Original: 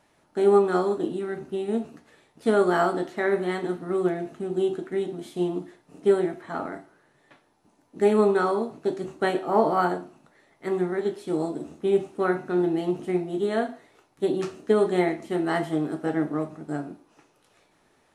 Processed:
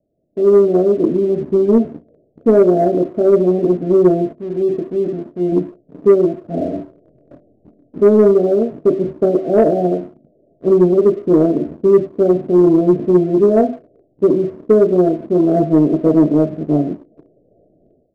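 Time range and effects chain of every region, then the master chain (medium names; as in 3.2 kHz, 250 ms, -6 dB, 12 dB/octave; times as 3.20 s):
4.32–5.52 s: rippled Chebyshev low-pass 4.8 kHz, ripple 9 dB + transient shaper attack -4 dB, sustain +3 dB
6.48–8.00 s: peaking EQ 62 Hz +4 dB 1.6 oct + doubling 24 ms -3 dB
whole clip: steep low-pass 680 Hz 96 dB/octave; level rider gain up to 16 dB; waveshaping leveller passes 1; trim -1 dB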